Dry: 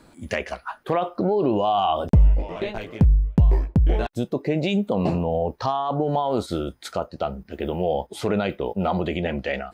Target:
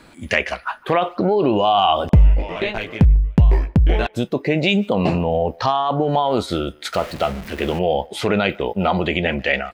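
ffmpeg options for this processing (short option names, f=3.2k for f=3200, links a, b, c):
-filter_complex "[0:a]asettb=1/sr,asplit=3[a][b][c];[a]atrim=end=6.934[d];[b]atrim=start=6.93:end=7.79,asetpts=PTS-STARTPTS,afade=t=in:d=0.004:c=qsin,afade=t=out:st=0.856:d=0.004:c=qsin,aeval=exprs='val(0)+0.5*0.0178*sgn(val(0))':c=same[e];[c]atrim=start=7.786[f];[d][e]acrossfade=d=0.004:c1=hsin:c2=qsin[g];[g][f]acrossfade=d=0.004:c1=qsin:c2=hsin,equalizer=f=2.4k:t=o:w=1.7:g=8,asplit=2[h][i];[i]adelay=150,highpass=300,lowpass=3.4k,asoftclip=type=hard:threshold=-14dB,volume=-25dB[j];[h][j]amix=inputs=2:normalize=0,volume=3.5dB"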